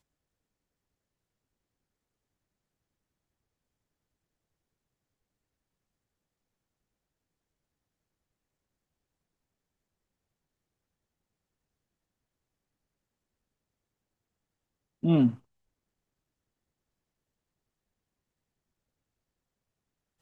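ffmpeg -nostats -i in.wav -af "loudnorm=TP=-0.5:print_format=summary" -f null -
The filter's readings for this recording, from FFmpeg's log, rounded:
Input Integrated:    -26.0 LUFS
Input True Peak:     -14.0 dBTP
Input LRA:             0.0 LU
Input Threshold:     -36.7 LUFS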